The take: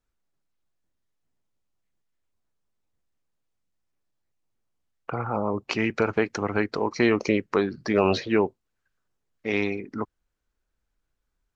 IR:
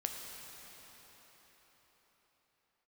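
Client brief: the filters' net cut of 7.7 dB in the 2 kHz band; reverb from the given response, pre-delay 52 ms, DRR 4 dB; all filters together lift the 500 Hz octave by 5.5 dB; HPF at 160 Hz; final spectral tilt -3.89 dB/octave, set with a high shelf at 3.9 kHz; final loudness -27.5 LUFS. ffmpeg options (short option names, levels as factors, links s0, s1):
-filter_complex "[0:a]highpass=160,equalizer=f=500:t=o:g=7.5,equalizer=f=2000:t=o:g=-8,highshelf=f=3900:g=-8,asplit=2[s0][s1];[1:a]atrim=start_sample=2205,adelay=52[s2];[s1][s2]afir=irnorm=-1:irlink=0,volume=0.531[s3];[s0][s3]amix=inputs=2:normalize=0,volume=0.501"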